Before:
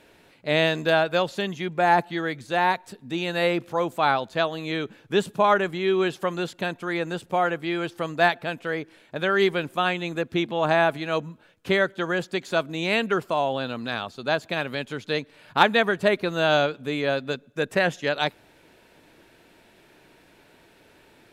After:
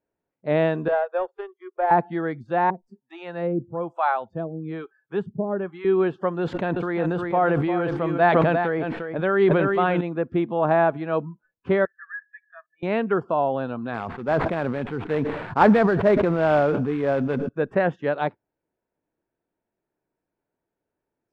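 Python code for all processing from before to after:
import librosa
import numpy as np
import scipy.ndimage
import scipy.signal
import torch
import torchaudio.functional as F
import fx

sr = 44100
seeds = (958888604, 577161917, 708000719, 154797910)

y = fx.chain(x, sr, fx.steep_highpass(hz=370.0, slope=96),
    fx.high_shelf(hz=2300.0, db=-11.5),
    fx.power_curve(exponent=1.4), at=(0.88, 1.91))
y = fx.chain(y, sr, fx.peak_eq(hz=120.0, db=4.0, octaves=1.2),
    fx.harmonic_tremolo(hz=1.1, depth_pct=100, crossover_hz=520.0), at=(2.7, 5.85))
y = fx.chain(y, sr, fx.high_shelf(hz=4500.0, db=7.0),
    fx.echo_single(ms=351, db=-9.0),
    fx.sustainer(db_per_s=20.0), at=(6.41, 10.01))
y = fx.chain(y, sr, fx.bandpass_q(hz=1700.0, q=13.0),
    fx.comb(ms=1.7, depth=0.61), at=(11.85, 12.83))
y = fx.chain(y, sr, fx.sample_hold(seeds[0], rate_hz=6000.0, jitter_pct=20),
    fx.sustainer(db_per_s=30.0), at=(13.94, 17.49))
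y = scipy.signal.sosfilt(scipy.signal.butter(2, 1200.0, 'lowpass', fs=sr, output='sos'), y)
y = fx.noise_reduce_blind(y, sr, reduce_db=29)
y = y * 10.0 ** (2.5 / 20.0)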